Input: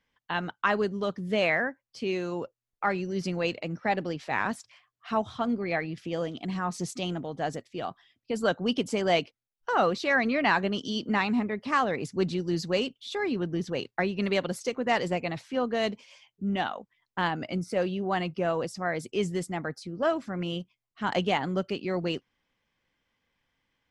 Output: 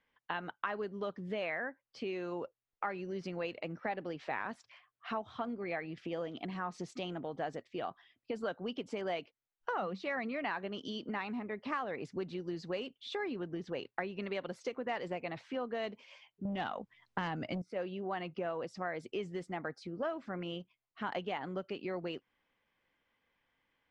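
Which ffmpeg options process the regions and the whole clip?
ffmpeg -i in.wav -filter_complex "[0:a]asettb=1/sr,asplit=3[link_01][link_02][link_03];[link_01]atrim=end=9.764[link_04];[link_02]atrim=start=9.76:end=10.34,asetpts=PTS-STARTPTS,afade=type=in:duration=0.004:curve=qsin,afade=type=out:start_time=0.576:duration=0.004:curve=qsin,highpass=63,equalizer=frequency=190:width_type=o:width=0.28:gain=12,bandreject=frequency=1600:width=12[link_05];[link_03]atrim=start=10.336[link_06];[link_04][link_05]acrossfade=duration=0.004:curve1=hsin:curve2=qsin[link_07];[link_07][link_06]acrossfade=duration=0.004:curve1=qsin:curve2=hsin,asettb=1/sr,asplit=3[link_08][link_09][link_10];[link_08]atrim=end=16.454[link_11];[link_09]atrim=start=16.45:end=17.62,asetpts=PTS-STARTPTS,afade=type=in:duration=0.004:curve=qsin,afade=type=out:start_time=1.166:duration=0.004:curve=qsin,bass=frequency=250:gain=10,treble=frequency=4000:gain=7,aeval=exprs='0.211*sin(PI/2*1.58*val(0)/0.211)':channel_layout=same[link_12];[link_10]atrim=start=17.616[link_13];[link_11][link_12]acrossfade=duration=0.004:curve1=hsin:curve2=qsin[link_14];[link_14][link_13]acrossfade=duration=0.004:curve1=qsin:curve2=hsin,acompressor=threshold=-34dB:ratio=5,lowpass=7000,bass=frequency=250:gain=-7,treble=frequency=4000:gain=-11" out.wav

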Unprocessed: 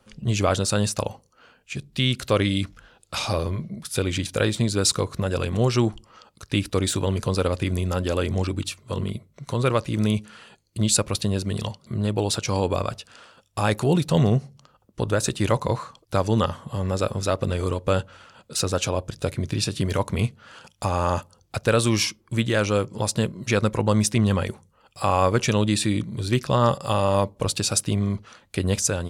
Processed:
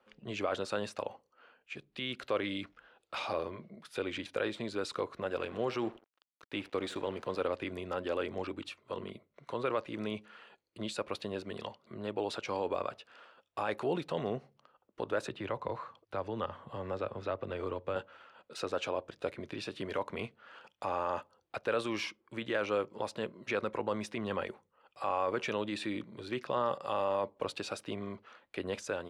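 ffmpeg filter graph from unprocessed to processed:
ffmpeg -i in.wav -filter_complex "[0:a]asettb=1/sr,asplit=3[link_01][link_02][link_03];[link_01]atrim=end=5.284[link_04];[link_02]atrim=start=5.28:end=7.41,asetpts=PTS-STARTPTS,afade=type=in:duration=0.004:curve=qsin,afade=type=out:start_time=2.126:duration=0.004:curve=qsin,asplit=2[link_05][link_06];[link_06]adelay=78,lowpass=frequency=4700:poles=1,volume=-18.5dB,asplit=2[link_07][link_08];[link_08]adelay=78,lowpass=frequency=4700:poles=1,volume=0.43,asplit=2[link_09][link_10];[link_10]adelay=78,lowpass=frequency=4700:poles=1,volume=0.43[link_11];[link_05][link_07][link_09][link_11]amix=inputs=4:normalize=0,atrim=end_sample=93933,aeval=exprs='sgn(val(0))*max(abs(val(0))-0.00841,0)':channel_layout=same[link_12];[link_03]atrim=start=7.406[link_13];[link_04][link_12]acrossfade=duration=0.004:curve1=hsin:curve2=qsin[link_14];[link_14][link_13]acrossfade=duration=0.004:curve1=qsin:curve2=hsin,asettb=1/sr,asplit=3[link_15][link_16][link_17];[link_15]atrim=end=15.274[link_18];[link_16]atrim=start=15.27:end=17.96,asetpts=PTS-STARTPTS,afade=type=in:duration=0.004:curve=qsin,afade=type=out:start_time=2.686:duration=0.004:curve=qsin,equalizer=frequency=97:width_type=o:width=1.2:gain=13,acrossover=split=180|4300[link_19][link_20][link_21];[link_19]acompressor=threshold=-24dB:ratio=4[link_22];[link_20]acompressor=threshold=-23dB:ratio=4[link_23];[link_21]acompressor=threshold=-55dB:ratio=4[link_24];[link_22][link_23][link_24]amix=inputs=3:normalize=0[link_25];[link_17]atrim=start=17.956[link_26];[link_18][link_25]acrossfade=duration=0.004:curve1=hsin:curve2=qsin[link_27];[link_27][link_26]acrossfade=duration=0.004:curve1=qsin:curve2=hsin,alimiter=limit=-13.5dB:level=0:latency=1:release=13,acrossover=split=280 3400:gain=0.1 1 0.1[link_28][link_29][link_30];[link_28][link_29][link_30]amix=inputs=3:normalize=0,volume=-6.5dB" out.wav

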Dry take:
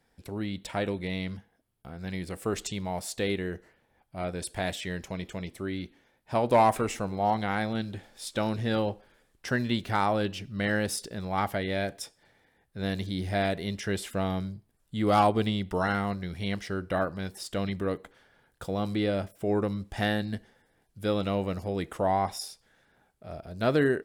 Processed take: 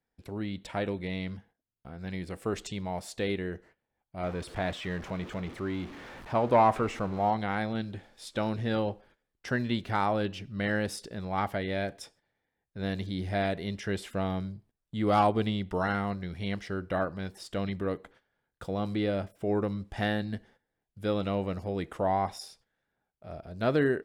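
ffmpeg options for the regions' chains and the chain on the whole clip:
ffmpeg -i in.wav -filter_complex "[0:a]asettb=1/sr,asplit=3[link_01][link_02][link_03];[link_01]atrim=end=4.234[link_04];[link_02]atrim=start=4.23:end=7.29,asetpts=PTS-STARTPTS,afade=type=in:duration=0.004:curve=qsin,afade=type=out:start_time=3.056:duration=0.004:curve=qsin,aeval=exprs='val(0)+0.5*0.0133*sgn(val(0))':channel_layout=same,lowpass=frequency=3600:poles=1,equalizer=frequency=1200:width_type=o:width=0.49:gain=4[link_05];[link_03]atrim=start=7.286[link_06];[link_04][link_05]acrossfade=duration=0.004:curve1=hsin:curve2=qsin[link_07];[link_07][link_06]acrossfade=duration=0.004:curve1=qsin:curve2=hsin,agate=range=-14dB:threshold=-55dB:ratio=16:detection=peak,highshelf=frequency=6400:gain=-10,volume=-1.5dB" out.wav

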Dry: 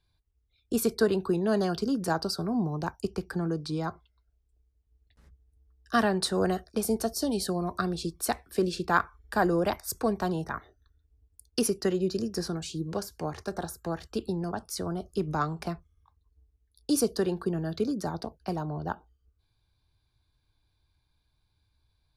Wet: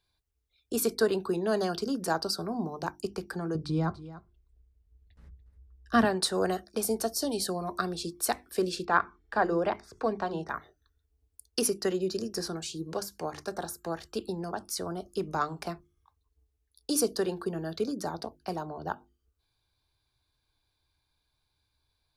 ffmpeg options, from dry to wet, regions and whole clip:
ffmpeg -i in.wav -filter_complex "[0:a]asettb=1/sr,asplit=3[link_01][link_02][link_03];[link_01]atrim=end=3.554[link_04];[link_02]atrim=start=3.55:end=6.05,asetpts=PTS-STARTPTS,afade=type=in:duration=0.004:curve=qsin,afade=type=out:start_time=2.496:duration=0.004:curve=qsin,bass=frequency=250:gain=14,treble=frequency=4000:gain=-8,bandreject=frequency=128.8:width_type=h:width=4,bandreject=frequency=257.6:width_type=h:width=4,bandreject=frequency=386.4:width_type=h:width=4,aecho=1:1:289:0.158,atrim=end_sample=110250[link_05];[link_03]atrim=start=6.046[link_06];[link_04][link_05]acrossfade=duration=0.004:curve1=hsin:curve2=qsin[link_07];[link_07][link_06]acrossfade=duration=0.004:curve1=qsin:curve2=hsin,asettb=1/sr,asplit=3[link_08][link_09][link_10];[link_08]atrim=end=8.854[link_11];[link_09]atrim=start=8.85:end=10.49,asetpts=PTS-STARTPTS,afade=type=in:duration=0.004:curve=qsin,afade=type=out:start_time=1.636:duration=0.004:curve=qsin,acrossover=split=2700[link_12][link_13];[link_13]acompressor=threshold=-47dB:ratio=4:attack=1:release=60[link_14];[link_12][link_14]amix=inputs=2:normalize=0,lowpass=4700,bandreject=frequency=60:width_type=h:width=6,bandreject=frequency=120:width_type=h:width=6,bandreject=frequency=180:width_type=h:width=6,bandreject=frequency=240:width_type=h:width=6,bandreject=frequency=300:width_type=h:width=6,bandreject=frequency=360:width_type=h:width=6,bandreject=frequency=420:width_type=h:width=6[link_15];[link_10]atrim=start=10.486[link_16];[link_11][link_15]acrossfade=duration=0.004:curve1=hsin:curve2=qsin[link_17];[link_17][link_16]acrossfade=duration=0.004:curve1=qsin:curve2=hsin,bass=frequency=250:gain=-7,treble=frequency=4000:gain=2,bandreject=frequency=50:width_type=h:width=6,bandreject=frequency=100:width_type=h:width=6,bandreject=frequency=150:width_type=h:width=6,bandreject=frequency=200:width_type=h:width=6,bandreject=frequency=250:width_type=h:width=6,bandreject=frequency=300:width_type=h:width=6,bandreject=frequency=350:width_type=h:width=6" out.wav

